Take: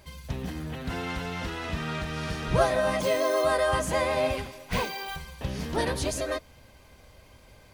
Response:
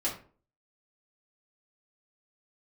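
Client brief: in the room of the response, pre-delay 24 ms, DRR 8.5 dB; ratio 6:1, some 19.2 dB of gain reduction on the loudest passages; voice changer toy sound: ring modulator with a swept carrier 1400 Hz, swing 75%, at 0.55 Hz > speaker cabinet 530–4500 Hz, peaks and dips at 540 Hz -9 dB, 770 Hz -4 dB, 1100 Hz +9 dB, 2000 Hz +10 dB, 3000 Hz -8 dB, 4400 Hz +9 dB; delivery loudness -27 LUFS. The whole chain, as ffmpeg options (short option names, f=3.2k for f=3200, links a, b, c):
-filter_complex "[0:a]acompressor=threshold=-39dB:ratio=6,asplit=2[a][b];[1:a]atrim=start_sample=2205,adelay=24[c];[b][c]afir=irnorm=-1:irlink=0,volume=-14dB[d];[a][d]amix=inputs=2:normalize=0,aeval=exprs='val(0)*sin(2*PI*1400*n/s+1400*0.75/0.55*sin(2*PI*0.55*n/s))':c=same,highpass=530,equalizer=f=540:t=q:w=4:g=-9,equalizer=f=770:t=q:w=4:g=-4,equalizer=f=1.1k:t=q:w=4:g=9,equalizer=f=2k:t=q:w=4:g=10,equalizer=f=3k:t=q:w=4:g=-8,equalizer=f=4.4k:t=q:w=4:g=9,lowpass=f=4.5k:w=0.5412,lowpass=f=4.5k:w=1.3066,volume=12dB"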